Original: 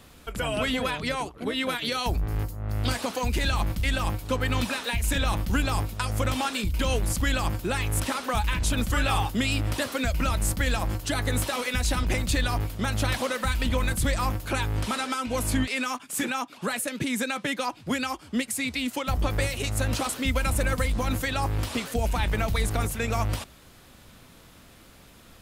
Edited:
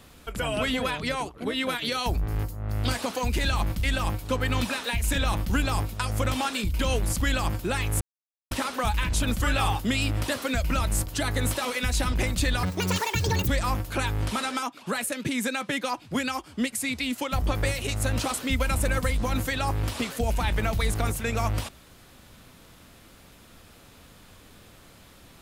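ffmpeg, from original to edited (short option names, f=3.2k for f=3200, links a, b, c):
-filter_complex "[0:a]asplit=6[a][b][c][d][e][f];[a]atrim=end=8.01,asetpts=PTS-STARTPTS,afade=t=out:st=8.006:d=0.004:c=hsin,apad=pad_dur=0.5[g];[b]atrim=start=8.01:end=10.572,asetpts=PTS-STARTPTS,afade=t=in:d=0.004:c=hsin[h];[c]atrim=start=10.978:end=12.544[i];[d]atrim=start=12.54:end=14.03,asetpts=PTS-STARTPTS,asetrate=77616,aresample=44100[j];[e]atrim=start=14.026:end=15.182[k];[f]atrim=start=16.378[l];[g][h]concat=n=2:v=0:a=1[m];[m][i]acrossfade=d=0.004:c1=hsin:c2=hsin[n];[n][j]acrossfade=d=0.004:c1=hsin:c2=hsin[o];[o][k]acrossfade=d=0.004:c1=hsin:c2=hsin[p];[p][l]acrossfade=d=0.004:c1=hsin:c2=hsin"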